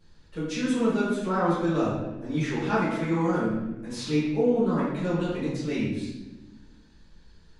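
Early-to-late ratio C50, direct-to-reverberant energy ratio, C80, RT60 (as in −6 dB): −0.5 dB, −12.0 dB, 3.0 dB, 1.1 s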